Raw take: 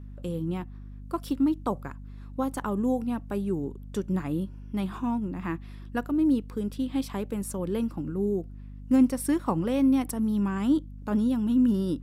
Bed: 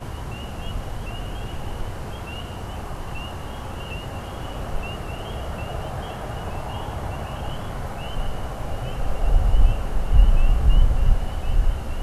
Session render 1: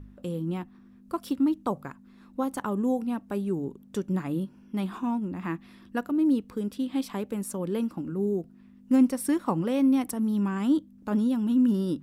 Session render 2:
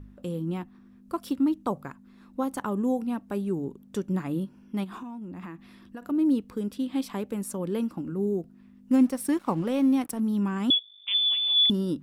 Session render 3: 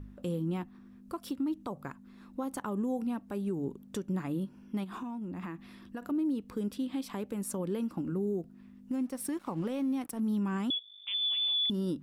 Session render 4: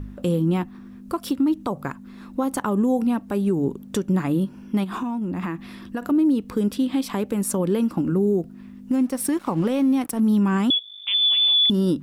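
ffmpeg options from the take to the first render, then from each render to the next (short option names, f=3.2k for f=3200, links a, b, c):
-af "bandreject=f=50:t=h:w=4,bandreject=f=100:t=h:w=4,bandreject=f=150:t=h:w=4"
-filter_complex "[0:a]asplit=3[a][b][c];[a]afade=t=out:st=4.83:d=0.02[d];[b]acompressor=threshold=-35dB:ratio=12:attack=3.2:release=140:knee=1:detection=peak,afade=t=in:st=4.83:d=0.02,afade=t=out:st=6.01:d=0.02[e];[c]afade=t=in:st=6.01:d=0.02[f];[d][e][f]amix=inputs=3:normalize=0,asettb=1/sr,asplit=3[g][h][i];[g]atrim=end=8.934[j];[h]atrim=start=8.93:end=10.2,asetpts=PTS-STARTPTS,afade=t=in:d=0.004:c=qsin,afade=t=out:st=1.266:d=0.004:c=qsin,aeval=exprs='sgn(val(0))*max(abs(val(0))-0.00335,0)':c=same[k];[i]atrim=start=10.196[l];[j][k]acrossfade=d=0.004:c1=hsin:c2=qsin[m];[m][l]acrossfade=d=0.004:c1=qsin:c2=hsin,asettb=1/sr,asplit=3[n][o][p];[n]atrim=end=10.704[q];[o]atrim=start=10.7:end=11.7,asetpts=PTS-STARTPTS,afade=t=in:d=0.004:c=qsin,afade=t=out:st=0.996:d=0.004:c=qsin,lowpass=f=3.1k:t=q:w=0.5098,lowpass=f=3.1k:t=q:w=0.6013,lowpass=f=3.1k:t=q:w=0.9,lowpass=f=3.1k:t=q:w=2.563,afreqshift=-3700[r];[p]atrim=start=11.696[s];[q][r]acrossfade=d=0.004:c1=hsin:c2=qsin[t];[t][s]acrossfade=d=0.004:c1=qsin:c2=hsin"
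-af "acompressor=threshold=-25dB:ratio=6,alimiter=level_in=1.5dB:limit=-24dB:level=0:latency=1:release=229,volume=-1.5dB"
-af "volume=12dB"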